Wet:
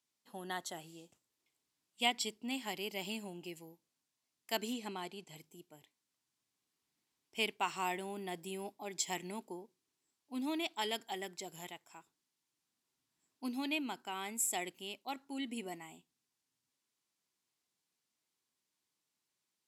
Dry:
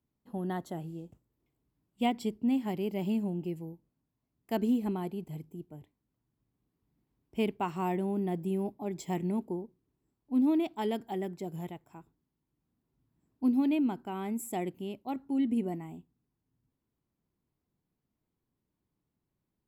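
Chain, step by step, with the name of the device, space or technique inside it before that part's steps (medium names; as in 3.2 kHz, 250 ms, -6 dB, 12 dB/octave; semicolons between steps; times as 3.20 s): piezo pickup straight into a mixer (low-pass 6.5 kHz 12 dB/octave; differentiator); 4.73–5.36 s: low-pass 8.2 kHz 12 dB/octave; trim +15.5 dB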